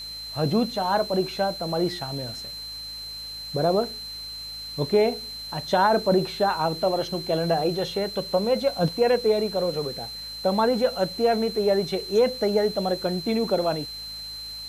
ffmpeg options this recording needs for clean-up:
-af "bandreject=f=53.7:t=h:w=4,bandreject=f=107.4:t=h:w=4,bandreject=f=161.1:t=h:w=4,bandreject=f=214.8:t=h:w=4,bandreject=f=4.1k:w=30,afwtdn=0.004"

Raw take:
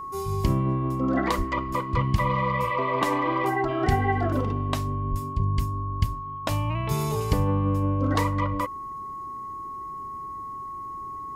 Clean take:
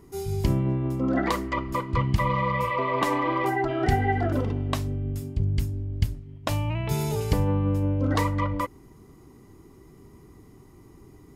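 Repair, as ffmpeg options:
-filter_complex "[0:a]bandreject=f=1.1k:w=30,asplit=3[a][b][c];[a]afade=t=out:st=1.37:d=0.02[d];[b]highpass=f=140:w=0.5412,highpass=f=140:w=1.3066,afade=t=in:st=1.37:d=0.02,afade=t=out:st=1.49:d=0.02[e];[c]afade=t=in:st=1.49:d=0.02[f];[d][e][f]amix=inputs=3:normalize=0,asplit=3[g][h][i];[g]afade=t=out:st=5.1:d=0.02[j];[h]highpass=f=140:w=0.5412,highpass=f=140:w=1.3066,afade=t=in:st=5.1:d=0.02,afade=t=out:st=5.22:d=0.02[k];[i]afade=t=in:st=5.22:d=0.02[l];[j][k][l]amix=inputs=3:normalize=0"

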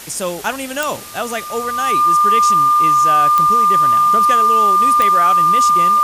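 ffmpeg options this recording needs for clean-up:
-af "adeclick=t=4,bandreject=f=1.2k:w=30,afwtdn=0.022"

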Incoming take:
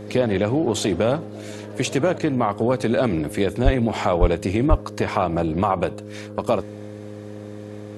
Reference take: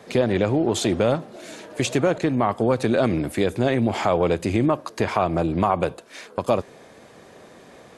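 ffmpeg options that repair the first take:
-filter_complex "[0:a]bandreject=f=104.3:t=h:w=4,bandreject=f=208.6:t=h:w=4,bandreject=f=312.9:t=h:w=4,bandreject=f=417.2:t=h:w=4,bandreject=f=521.5:t=h:w=4,asplit=3[a][b][c];[a]afade=t=out:st=3.64:d=0.02[d];[b]highpass=f=140:w=0.5412,highpass=f=140:w=1.3066,afade=t=in:st=3.64:d=0.02,afade=t=out:st=3.76:d=0.02[e];[c]afade=t=in:st=3.76:d=0.02[f];[d][e][f]amix=inputs=3:normalize=0,asplit=3[g][h][i];[g]afade=t=out:st=4.2:d=0.02[j];[h]highpass=f=140:w=0.5412,highpass=f=140:w=1.3066,afade=t=in:st=4.2:d=0.02,afade=t=out:st=4.32:d=0.02[k];[i]afade=t=in:st=4.32:d=0.02[l];[j][k][l]amix=inputs=3:normalize=0,asplit=3[m][n][o];[m]afade=t=out:st=4.69:d=0.02[p];[n]highpass=f=140:w=0.5412,highpass=f=140:w=1.3066,afade=t=in:st=4.69:d=0.02,afade=t=out:st=4.81:d=0.02[q];[o]afade=t=in:st=4.81:d=0.02[r];[p][q][r]amix=inputs=3:normalize=0"

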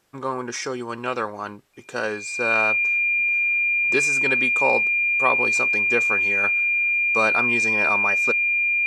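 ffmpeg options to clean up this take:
-af "bandreject=f=2.4k:w=30"

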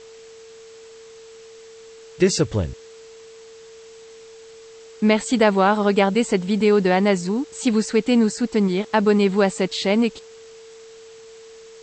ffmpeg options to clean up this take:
-af "bandreject=f=450:w=30,afwtdn=0.0045"

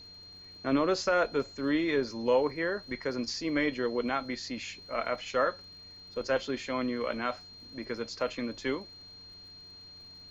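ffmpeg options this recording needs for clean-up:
-af "adeclick=t=4,bandreject=f=92.2:t=h:w=4,bandreject=f=184.4:t=h:w=4,bandreject=f=276.6:t=h:w=4,bandreject=f=368.8:t=h:w=4,bandreject=f=461:t=h:w=4,bandreject=f=4.2k:w=30,agate=range=-21dB:threshold=-42dB"

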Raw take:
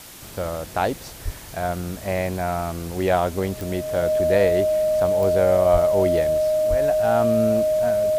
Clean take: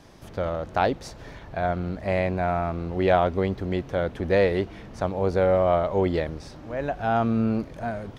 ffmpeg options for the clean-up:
-filter_complex "[0:a]adeclick=t=4,bandreject=f=620:w=30,asplit=3[a][b][c];[a]afade=t=out:st=1.24:d=0.02[d];[b]highpass=f=140:w=0.5412,highpass=f=140:w=1.3066,afade=t=in:st=1.24:d=0.02,afade=t=out:st=1.36:d=0.02[e];[c]afade=t=in:st=1.36:d=0.02[f];[d][e][f]amix=inputs=3:normalize=0,asplit=3[g][h][i];[g]afade=t=out:st=5.72:d=0.02[j];[h]highpass=f=140:w=0.5412,highpass=f=140:w=1.3066,afade=t=in:st=5.72:d=0.02,afade=t=out:st=5.84:d=0.02[k];[i]afade=t=in:st=5.84:d=0.02[l];[j][k][l]amix=inputs=3:normalize=0,asplit=3[m][n][o];[m]afade=t=out:st=6.69:d=0.02[p];[n]highpass=f=140:w=0.5412,highpass=f=140:w=1.3066,afade=t=in:st=6.69:d=0.02,afade=t=out:st=6.81:d=0.02[q];[o]afade=t=in:st=6.81:d=0.02[r];[p][q][r]amix=inputs=3:normalize=0,afwtdn=0.0089"

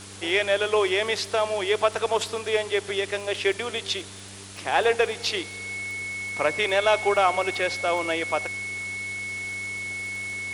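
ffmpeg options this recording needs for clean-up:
-af "adeclick=t=4,bandreject=f=98.2:t=h:w=4,bandreject=f=196.4:t=h:w=4,bandreject=f=294.6:t=h:w=4,bandreject=f=392.8:t=h:w=4,bandreject=f=2.2k:w=30,afwtdn=0.0089"

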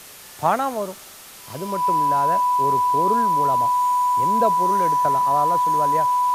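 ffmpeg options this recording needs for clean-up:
-af "bandreject=f=990:w=30,afftdn=nr=26:nf=-42"

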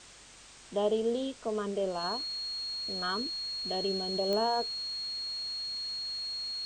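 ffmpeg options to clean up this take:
-af "adeclick=t=4,bandreject=f=47.4:t=h:w=4,bandreject=f=94.8:t=h:w=4,bandreject=f=142.2:t=h:w=4,bandreject=f=189.6:t=h:w=4,bandreject=f=237:t=h:w=4,bandreject=f=284.4:t=h:w=4,bandreject=f=4.3k:w=30,afwtdn=0.0032"

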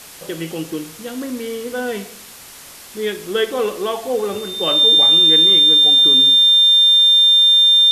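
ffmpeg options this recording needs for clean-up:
-af "bandreject=f=3.6k:w=30,afwtdn=0.014"

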